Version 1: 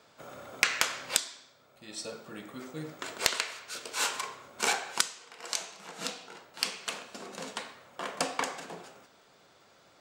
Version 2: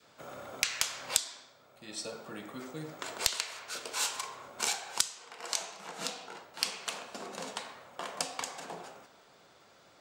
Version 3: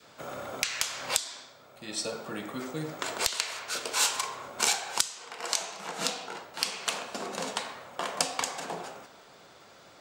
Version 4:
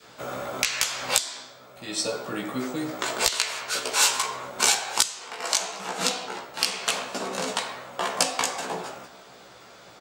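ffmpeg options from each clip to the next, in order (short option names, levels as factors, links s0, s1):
-filter_complex "[0:a]adynamicequalizer=threshold=0.00398:dfrequency=810:dqfactor=1.1:tfrequency=810:tqfactor=1.1:attack=5:release=100:ratio=0.375:range=3:mode=boostabove:tftype=bell,acrossover=split=130|3000[s0][s1][s2];[s1]acompressor=threshold=0.0126:ratio=6[s3];[s0][s3][s2]amix=inputs=3:normalize=0"
-af "alimiter=limit=0.237:level=0:latency=1:release=238,volume=2.11"
-filter_complex "[0:a]asplit=2[s0][s1];[s1]adelay=16,volume=0.75[s2];[s0][s2]amix=inputs=2:normalize=0,volume=1.5"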